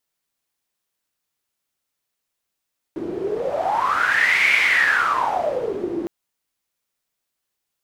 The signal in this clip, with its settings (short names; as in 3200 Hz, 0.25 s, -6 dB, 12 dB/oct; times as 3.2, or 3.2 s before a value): wind-like swept noise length 3.11 s, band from 330 Hz, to 2200 Hz, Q 11, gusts 1, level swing 9.5 dB